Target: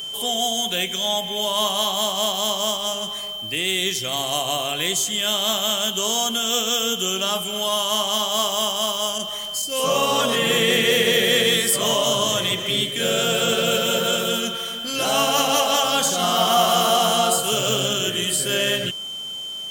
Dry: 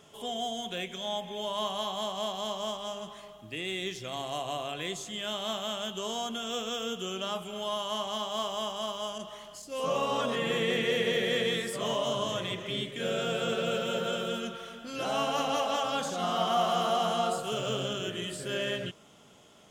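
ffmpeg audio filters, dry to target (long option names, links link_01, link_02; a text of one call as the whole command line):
ffmpeg -i in.wav -af "aeval=exprs='val(0)+0.00794*sin(2*PI*3100*n/s)':channel_layout=same,aemphasis=mode=production:type=75fm,volume=9dB" out.wav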